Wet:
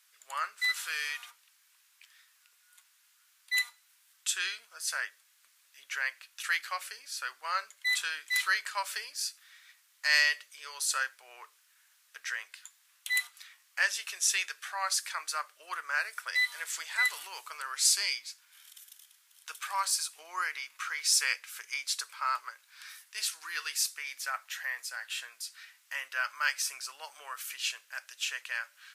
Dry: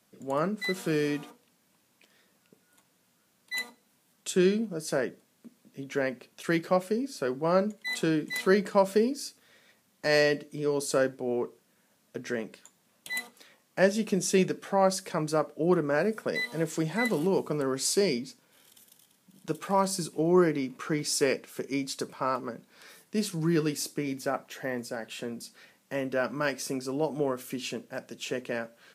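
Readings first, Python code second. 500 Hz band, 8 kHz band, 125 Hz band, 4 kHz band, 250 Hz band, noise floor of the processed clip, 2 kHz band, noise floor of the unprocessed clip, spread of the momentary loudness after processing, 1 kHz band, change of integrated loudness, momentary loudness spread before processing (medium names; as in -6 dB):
-27.0 dB, +4.5 dB, under -40 dB, +4.5 dB, under -40 dB, -67 dBFS, +4.0 dB, -69 dBFS, 14 LU, -3.5 dB, -2.5 dB, 13 LU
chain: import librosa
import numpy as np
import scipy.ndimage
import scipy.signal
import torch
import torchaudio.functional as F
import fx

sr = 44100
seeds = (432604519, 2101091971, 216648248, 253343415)

y = scipy.signal.sosfilt(scipy.signal.butter(4, 1300.0, 'highpass', fs=sr, output='sos'), x)
y = y * librosa.db_to_amplitude(4.5)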